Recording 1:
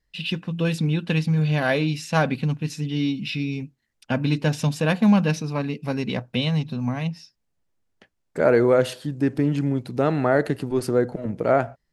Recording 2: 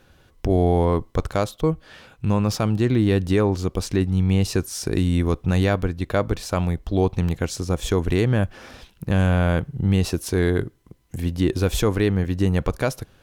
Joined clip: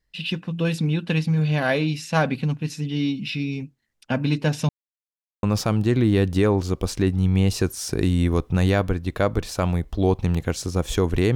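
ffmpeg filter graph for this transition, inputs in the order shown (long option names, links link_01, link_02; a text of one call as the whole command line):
ffmpeg -i cue0.wav -i cue1.wav -filter_complex "[0:a]apad=whole_dur=11.35,atrim=end=11.35,asplit=2[link_01][link_02];[link_01]atrim=end=4.69,asetpts=PTS-STARTPTS,afade=type=out:start_time=4.686:duration=0.004:curve=hsin[link_03];[link_02]atrim=start=4.69:end=5.43,asetpts=PTS-STARTPTS,volume=0[link_04];[1:a]atrim=start=2.37:end=8.29,asetpts=PTS-STARTPTS,afade=type=in:duration=0.004:curve=hsin[link_05];[link_03][link_04][link_05]concat=n=3:v=0:a=1" out.wav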